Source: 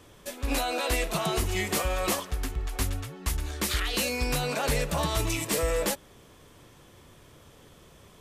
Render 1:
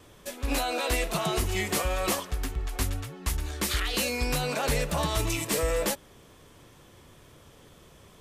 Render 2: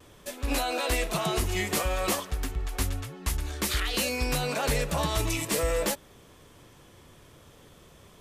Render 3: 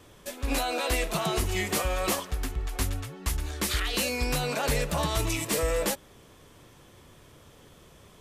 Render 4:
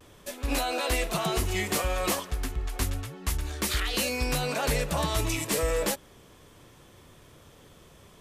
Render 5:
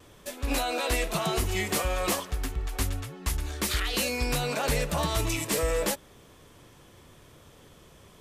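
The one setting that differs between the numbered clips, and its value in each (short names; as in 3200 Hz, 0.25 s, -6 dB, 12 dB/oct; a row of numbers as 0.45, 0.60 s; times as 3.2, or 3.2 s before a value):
vibrato, rate: 2.1, 0.55, 3.5, 0.31, 0.85 Hz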